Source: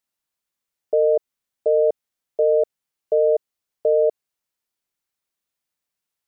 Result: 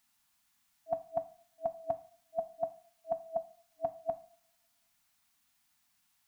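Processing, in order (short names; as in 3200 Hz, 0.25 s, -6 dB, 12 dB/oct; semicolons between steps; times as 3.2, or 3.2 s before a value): two-slope reverb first 0.48 s, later 1.7 s, from -26 dB, DRR 9.5 dB; FFT band-reject 300–650 Hz; gain +9.5 dB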